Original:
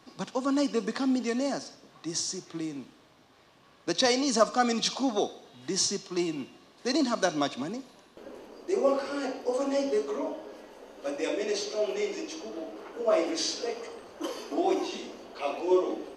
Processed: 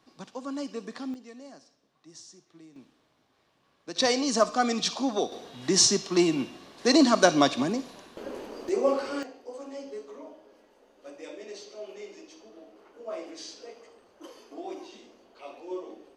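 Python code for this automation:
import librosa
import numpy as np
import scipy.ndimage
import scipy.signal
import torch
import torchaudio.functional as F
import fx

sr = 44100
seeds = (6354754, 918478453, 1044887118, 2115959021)

y = fx.gain(x, sr, db=fx.steps((0.0, -8.0), (1.14, -17.0), (2.76, -9.5), (3.96, 0.0), (5.32, 7.0), (8.69, 0.5), (9.23, -12.0)))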